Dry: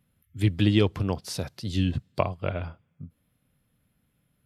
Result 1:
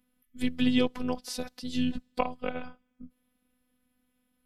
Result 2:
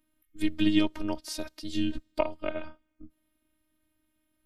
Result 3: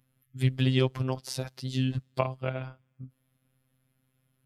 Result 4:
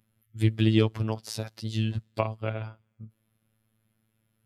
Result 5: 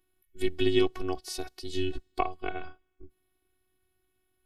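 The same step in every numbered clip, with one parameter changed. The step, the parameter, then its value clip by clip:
robot voice, frequency: 250 Hz, 310 Hz, 130 Hz, 110 Hz, 370 Hz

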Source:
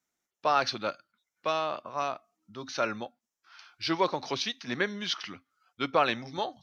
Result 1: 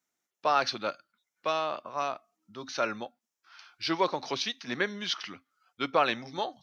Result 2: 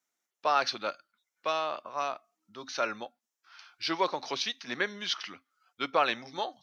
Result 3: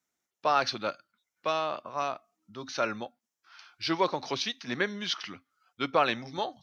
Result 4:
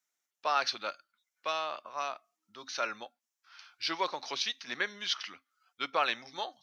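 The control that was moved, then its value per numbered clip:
high-pass, cutoff frequency: 150 Hz, 430 Hz, 41 Hz, 1.2 kHz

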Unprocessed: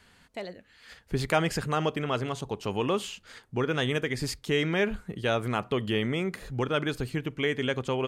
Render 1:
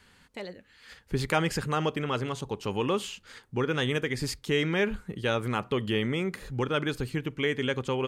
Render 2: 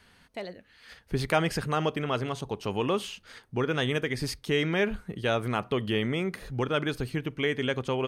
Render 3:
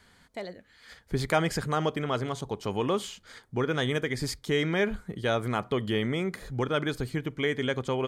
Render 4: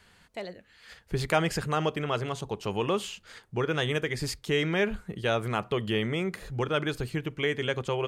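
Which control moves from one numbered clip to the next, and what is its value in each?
band-stop, frequency: 670 Hz, 7.3 kHz, 2.7 kHz, 260 Hz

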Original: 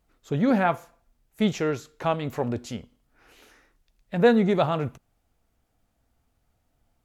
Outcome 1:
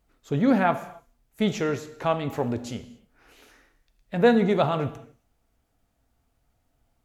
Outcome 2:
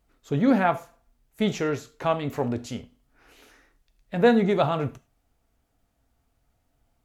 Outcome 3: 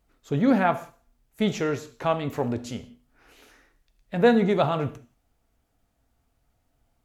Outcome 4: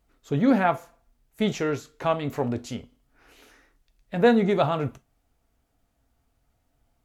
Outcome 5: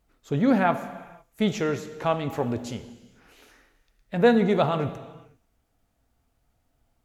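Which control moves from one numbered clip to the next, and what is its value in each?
gated-style reverb, gate: 310 ms, 130 ms, 210 ms, 80 ms, 530 ms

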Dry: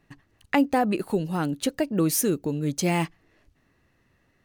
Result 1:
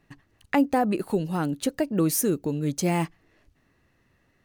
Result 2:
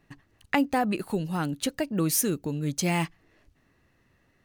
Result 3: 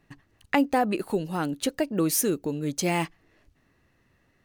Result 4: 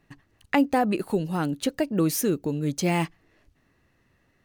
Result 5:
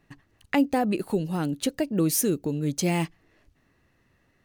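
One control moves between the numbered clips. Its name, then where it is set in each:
dynamic bell, frequency: 3.2 kHz, 420 Hz, 130 Hz, 9.5 kHz, 1.2 kHz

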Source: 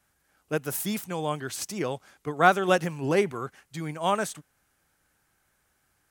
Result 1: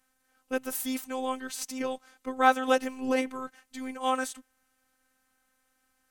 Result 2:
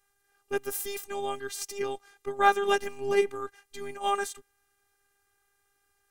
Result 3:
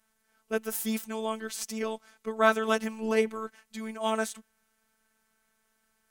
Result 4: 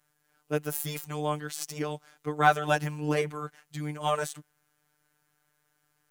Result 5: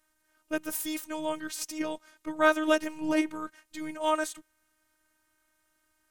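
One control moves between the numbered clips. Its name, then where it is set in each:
robot voice, frequency: 260 Hz, 400 Hz, 220 Hz, 150 Hz, 310 Hz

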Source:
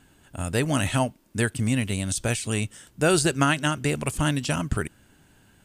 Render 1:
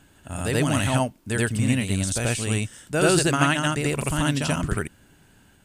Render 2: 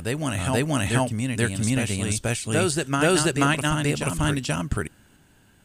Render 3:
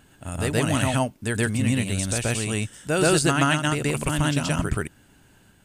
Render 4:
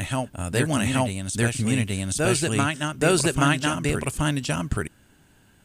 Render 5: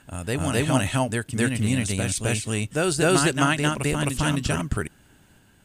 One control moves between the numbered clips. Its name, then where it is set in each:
reverse echo, time: 84 ms, 482 ms, 127 ms, 826 ms, 261 ms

